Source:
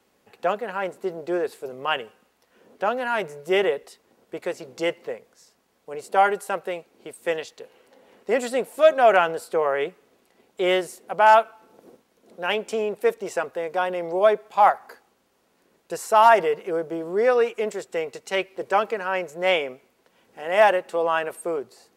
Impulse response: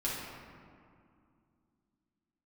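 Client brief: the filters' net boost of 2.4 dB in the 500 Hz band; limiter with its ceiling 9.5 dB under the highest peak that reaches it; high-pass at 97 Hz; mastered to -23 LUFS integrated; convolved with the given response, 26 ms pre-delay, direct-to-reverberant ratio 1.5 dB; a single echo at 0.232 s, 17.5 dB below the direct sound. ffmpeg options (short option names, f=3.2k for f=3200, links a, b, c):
-filter_complex "[0:a]highpass=97,equalizer=f=500:t=o:g=3,alimiter=limit=-12dB:level=0:latency=1,aecho=1:1:232:0.133,asplit=2[a][b];[1:a]atrim=start_sample=2205,adelay=26[c];[b][c]afir=irnorm=-1:irlink=0,volume=-7dB[d];[a][d]amix=inputs=2:normalize=0,volume=-0.5dB"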